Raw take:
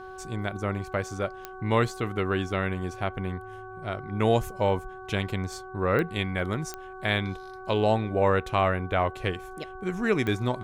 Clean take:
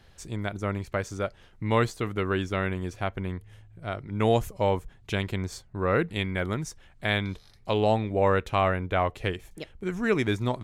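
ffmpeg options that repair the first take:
ffmpeg -i in.wav -af "adeclick=threshold=4,bandreject=frequency=375.6:width_type=h:width=4,bandreject=frequency=751.2:width_type=h:width=4,bandreject=frequency=1126.8:width_type=h:width=4,bandreject=frequency=1502.4:width_type=h:width=4" out.wav

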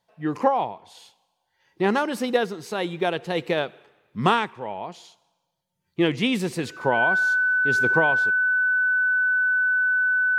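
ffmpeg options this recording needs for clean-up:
ffmpeg -i in.wav -af "bandreject=frequency=1500:width=30" out.wav

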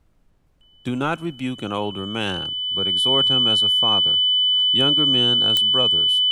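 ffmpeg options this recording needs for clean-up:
ffmpeg -i in.wav -af "adeclick=threshold=4,bandreject=frequency=3000:width=30,agate=range=-21dB:threshold=-47dB" out.wav

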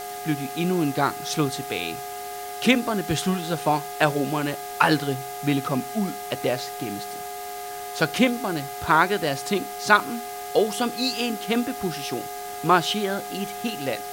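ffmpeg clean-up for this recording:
ffmpeg -i in.wav -af "adeclick=threshold=4,bandreject=frequency=410.3:width_type=h:width=4,bandreject=frequency=820.6:width_type=h:width=4,bandreject=frequency=1230.9:width_type=h:width=4,bandreject=frequency=1641.2:width_type=h:width=4,bandreject=frequency=2051.5:width_type=h:width=4,bandreject=frequency=720:width=30,afwtdn=0.01" out.wav

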